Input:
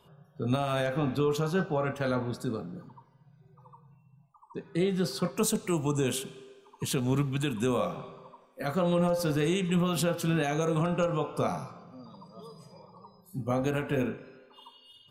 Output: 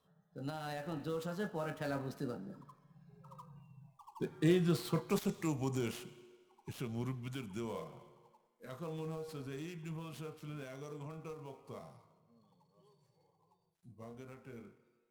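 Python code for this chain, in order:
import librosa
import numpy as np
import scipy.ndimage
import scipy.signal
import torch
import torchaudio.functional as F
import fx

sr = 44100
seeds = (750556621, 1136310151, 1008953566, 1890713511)

y = fx.dead_time(x, sr, dead_ms=0.065)
y = fx.doppler_pass(y, sr, speed_mps=34, closest_m=20.0, pass_at_s=3.78)
y = y * librosa.db_to_amplitude(2.0)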